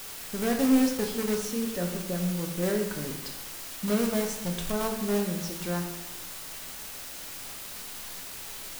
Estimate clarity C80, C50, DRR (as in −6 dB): 8.0 dB, 6.5 dB, 2.5 dB